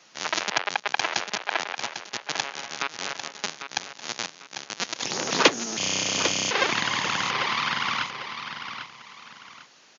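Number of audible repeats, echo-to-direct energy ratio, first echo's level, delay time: 2, -8.5 dB, -9.0 dB, 798 ms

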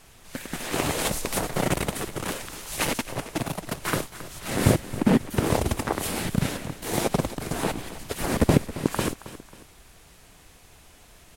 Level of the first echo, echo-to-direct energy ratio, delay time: -15.0 dB, -14.5 dB, 271 ms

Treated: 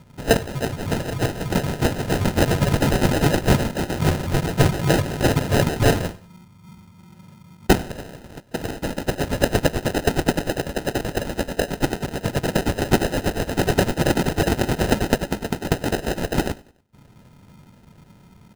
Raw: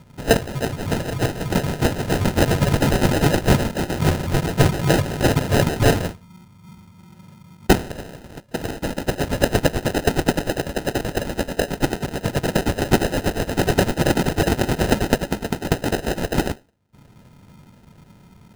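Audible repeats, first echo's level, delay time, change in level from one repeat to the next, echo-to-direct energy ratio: 2, -24.0 dB, 96 ms, -6.5 dB, -23.0 dB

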